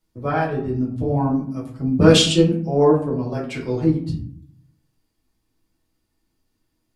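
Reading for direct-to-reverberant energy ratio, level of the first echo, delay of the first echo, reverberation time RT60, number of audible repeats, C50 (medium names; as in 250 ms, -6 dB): -5.0 dB, no echo, no echo, 0.60 s, no echo, 6.5 dB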